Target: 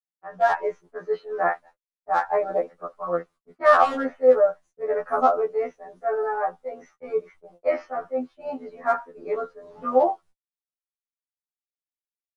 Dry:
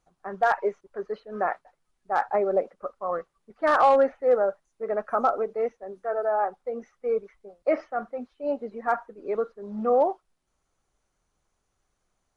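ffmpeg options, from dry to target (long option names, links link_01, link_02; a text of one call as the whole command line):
ffmpeg -i in.wav -af "dynaudnorm=framelen=270:gausssize=3:maxgain=7.5dB,agate=range=-48dB:threshold=-43dB:ratio=16:detection=peak,afftfilt=real='re*2*eq(mod(b,4),0)':imag='im*2*eq(mod(b,4),0)':win_size=2048:overlap=0.75,volume=-2dB" out.wav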